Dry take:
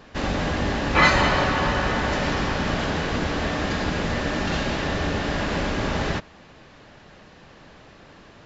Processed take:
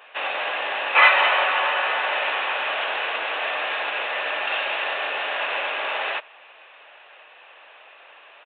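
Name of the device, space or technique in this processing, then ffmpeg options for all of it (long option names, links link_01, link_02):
musical greeting card: -af "aresample=8000,aresample=44100,highpass=frequency=590:width=0.5412,highpass=frequency=590:width=1.3066,equalizer=frequency=2600:width_type=o:width=0.28:gain=9.5,volume=2dB"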